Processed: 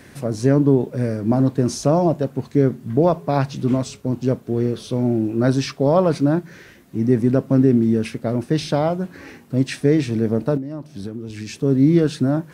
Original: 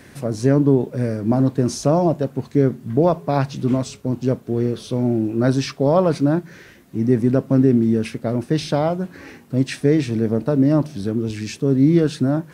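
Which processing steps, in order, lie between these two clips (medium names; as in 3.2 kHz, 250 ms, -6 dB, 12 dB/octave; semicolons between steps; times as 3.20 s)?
10.57–11.63 s: compression 16:1, threshold -26 dBFS, peak gain reduction 15.5 dB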